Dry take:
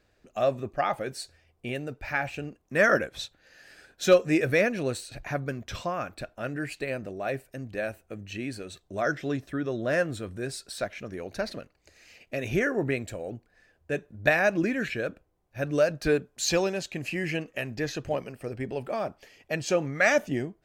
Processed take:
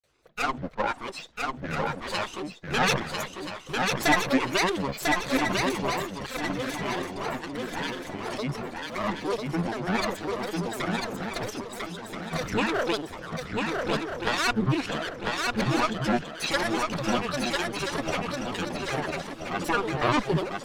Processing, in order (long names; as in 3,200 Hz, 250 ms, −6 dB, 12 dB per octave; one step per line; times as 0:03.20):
lower of the sound and its delayed copy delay 0.94 ms
low-pass filter 8,100 Hz 12 dB per octave
low shelf with overshoot 210 Hz −7 dB, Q 3
granular cloud, spray 24 ms, pitch spread up and down by 12 semitones
on a send: feedback echo with a long and a short gap by turns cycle 1,329 ms, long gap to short 3 to 1, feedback 34%, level −3 dB
on the sum: level +3 dB